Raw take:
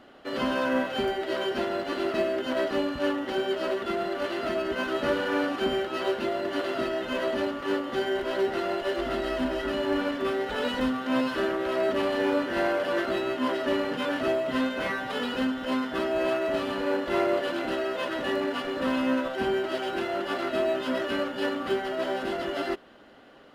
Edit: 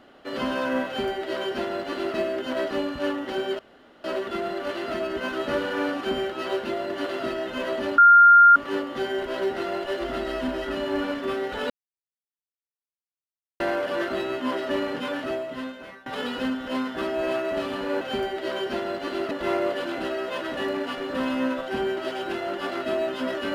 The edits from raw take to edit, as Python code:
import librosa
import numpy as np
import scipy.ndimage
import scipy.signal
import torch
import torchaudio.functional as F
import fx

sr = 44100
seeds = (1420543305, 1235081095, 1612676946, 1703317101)

y = fx.edit(x, sr, fx.duplicate(start_s=0.86, length_s=1.3, to_s=16.98),
    fx.insert_room_tone(at_s=3.59, length_s=0.45),
    fx.insert_tone(at_s=7.53, length_s=0.58, hz=1400.0, db=-9.0),
    fx.silence(start_s=10.67, length_s=1.9),
    fx.fade_out_to(start_s=13.94, length_s=1.09, floor_db=-22.0), tone=tone)